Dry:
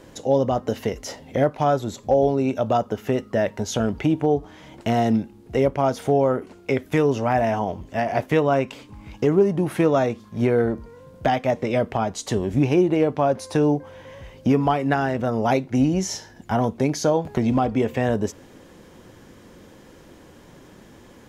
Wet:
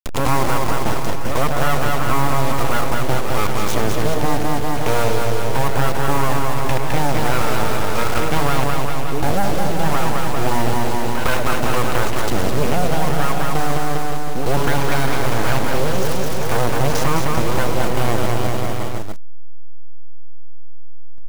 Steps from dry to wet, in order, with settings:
hold until the input has moved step −25.5 dBFS
echo ahead of the sound 107 ms −12 dB
full-wave rectification
on a send: bouncing-ball delay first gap 210 ms, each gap 0.9×, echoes 5
on the sum: envelope flattener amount 70%

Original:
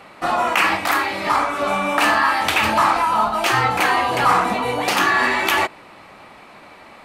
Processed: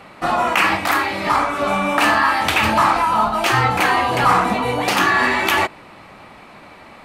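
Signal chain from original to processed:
bass and treble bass +5 dB, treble −1 dB
level +1 dB

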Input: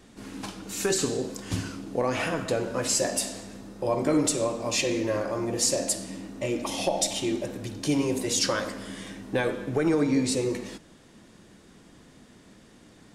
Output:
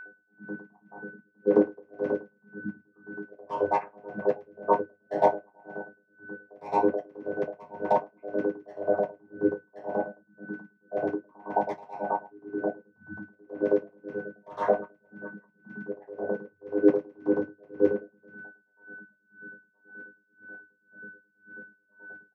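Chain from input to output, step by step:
variable-slope delta modulation 16 kbit/s
time stretch by phase vocoder 1.7×
double-tracking delay 45 ms −12 dB
channel vocoder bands 16, saw 102 Hz
gate on every frequency bin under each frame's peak −15 dB strong
flanger 1.7 Hz, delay 1.9 ms, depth 7.3 ms, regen −78%
auto-filter high-pass square 9.3 Hz 870–2,200 Hz
wave folding −34 dBFS
convolution reverb RT60 0.20 s, pre-delay 3 ms, DRR −11 dB
steady tone 1,500 Hz −46 dBFS
tremolo with a sine in dB 1.9 Hz, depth 30 dB
level +5.5 dB

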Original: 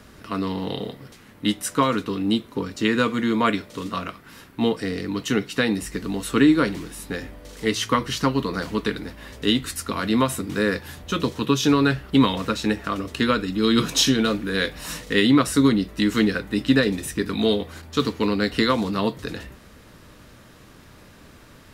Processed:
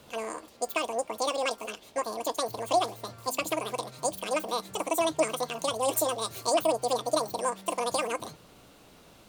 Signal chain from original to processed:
dynamic equaliser 1,100 Hz, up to −3 dB, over −34 dBFS, Q 0.71
wrong playback speed 33 rpm record played at 78 rpm
level −7 dB

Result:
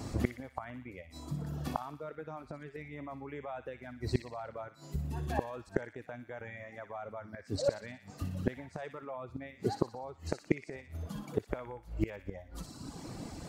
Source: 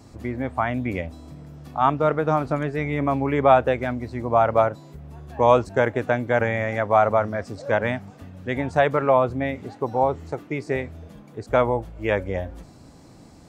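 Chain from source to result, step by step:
reverb reduction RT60 1 s
brickwall limiter −15 dBFS, peak gain reduction 11 dB
gate with flip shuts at −22 dBFS, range −25 dB
on a send: delay with a high-pass on its return 60 ms, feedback 57%, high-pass 1,800 Hz, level −7 dB
on the sum: level +7 dB

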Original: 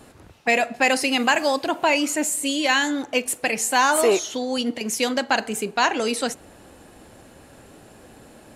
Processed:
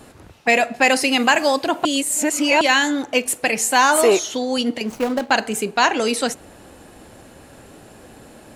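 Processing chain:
0:01.85–0:02.61: reverse
0:04.85–0:05.31: running median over 25 samples
level +3.5 dB

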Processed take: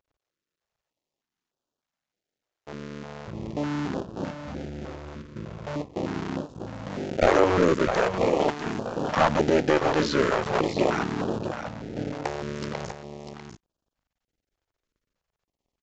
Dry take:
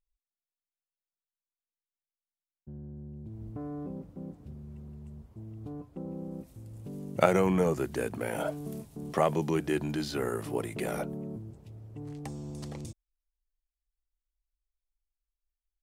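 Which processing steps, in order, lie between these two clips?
sub-harmonics by changed cycles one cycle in 2, muted
bass and treble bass 0 dB, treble +5 dB
in parallel at −11 dB: sample-rate reduction 1,200 Hz
on the sum: mid-hump overdrive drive 27 dB, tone 1,100 Hz, clips at −2.5 dBFS
on a send: single-tap delay 646 ms −8.5 dB
on the sum: downsampling to 16,000 Hz
notch on a step sequencer 3.3 Hz 200–2,100 Hz

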